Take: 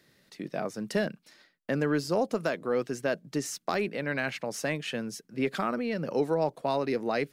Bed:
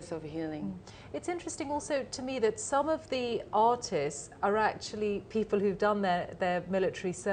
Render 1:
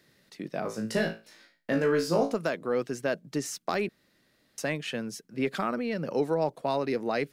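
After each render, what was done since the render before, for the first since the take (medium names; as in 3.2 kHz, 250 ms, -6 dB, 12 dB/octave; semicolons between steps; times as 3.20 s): 0.62–2.33 s: flutter echo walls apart 3.1 m, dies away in 0.29 s; 3.89–4.58 s: room tone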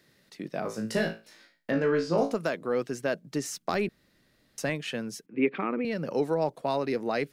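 1.71–2.18 s: distance through air 110 m; 3.54–4.70 s: bass shelf 120 Hz +10 dB; 5.26–5.85 s: cabinet simulation 180–2600 Hz, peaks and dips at 300 Hz +9 dB, 450 Hz +5 dB, 640 Hz -8 dB, 1.5 kHz -6 dB, 2.4 kHz +8 dB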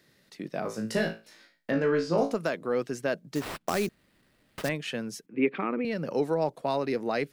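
3.35–4.69 s: sample-rate reducer 6.6 kHz, jitter 20%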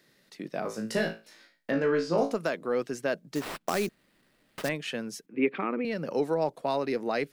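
peaking EQ 74 Hz -12 dB 1.2 oct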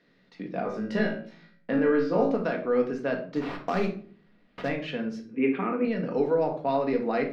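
distance through air 240 m; simulated room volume 460 m³, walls furnished, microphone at 1.8 m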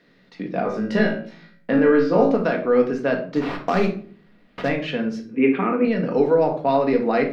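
trim +7 dB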